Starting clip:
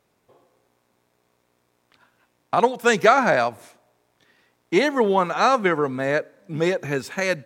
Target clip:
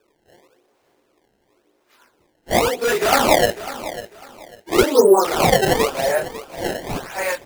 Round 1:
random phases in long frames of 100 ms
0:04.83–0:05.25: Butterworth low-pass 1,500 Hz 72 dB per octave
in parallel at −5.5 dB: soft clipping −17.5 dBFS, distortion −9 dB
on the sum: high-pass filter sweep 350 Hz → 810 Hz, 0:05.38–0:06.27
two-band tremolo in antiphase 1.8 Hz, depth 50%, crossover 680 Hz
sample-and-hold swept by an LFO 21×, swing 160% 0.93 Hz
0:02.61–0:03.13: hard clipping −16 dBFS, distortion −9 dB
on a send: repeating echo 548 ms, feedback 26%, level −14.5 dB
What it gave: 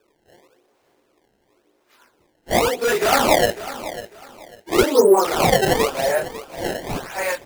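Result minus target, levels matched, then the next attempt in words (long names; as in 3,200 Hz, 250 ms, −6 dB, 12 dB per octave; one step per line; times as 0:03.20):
soft clipping: distortion +10 dB
random phases in long frames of 100 ms
0:04.83–0:05.25: Butterworth low-pass 1,500 Hz 72 dB per octave
in parallel at −5.5 dB: soft clipping −6.5 dBFS, distortion −19 dB
on the sum: high-pass filter sweep 350 Hz → 810 Hz, 0:05.38–0:06.27
two-band tremolo in antiphase 1.8 Hz, depth 50%, crossover 680 Hz
sample-and-hold swept by an LFO 21×, swing 160% 0.93 Hz
0:02.61–0:03.13: hard clipping −16 dBFS, distortion −8 dB
on a send: repeating echo 548 ms, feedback 26%, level −14.5 dB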